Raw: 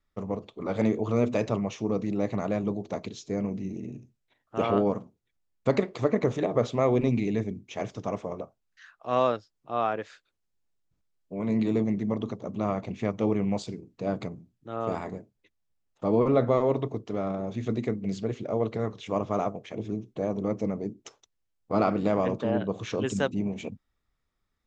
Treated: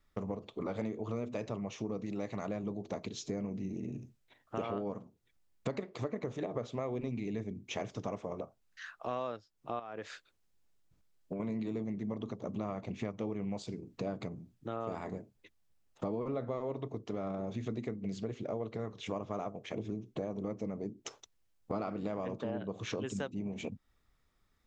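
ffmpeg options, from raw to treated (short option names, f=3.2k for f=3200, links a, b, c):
-filter_complex "[0:a]asettb=1/sr,asplit=3[a][b][c];[a]atrim=end=2.064[d];[b]atrim=start=2.06:end=2.47,asetpts=PTS-STARTPTS,afade=t=in:d=0.004:c=qsin,afade=t=out:st=0.406:d=0.004:c=qsin,tiltshelf=f=970:g=-3.5[e];[c]atrim=start=2.466[f];[d][e]acrossfade=d=0.004:c1=hsin:c2=qsin[g];[g][f]acrossfade=d=0.004:c1=qsin:c2=hsin,asettb=1/sr,asplit=3[h][i][j];[h]atrim=end=9.794[k];[i]atrim=start=9.79:end=11.4,asetpts=PTS-STARTPTS,afade=t=in:d=0.004:c=qsin,afade=t=out:st=1.606:d=0.004:c=qsin,acompressor=threshold=-34dB:ratio=6:attack=3.2:release=140:knee=1:detection=peak[l];[j]atrim=start=11.396[m];[k][l]acrossfade=d=0.004:c1=hsin:c2=qsin[n];[n][m]acrossfade=d=0.004:c1=qsin:c2=hsin,acompressor=threshold=-41dB:ratio=5,volume=5dB"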